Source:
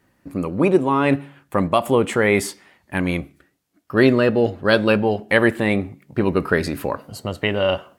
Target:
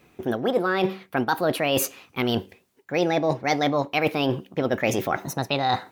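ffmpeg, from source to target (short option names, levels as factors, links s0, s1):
-af "areverse,acompressor=threshold=0.0501:ratio=4,areverse,asetrate=59535,aresample=44100,volume=1.78"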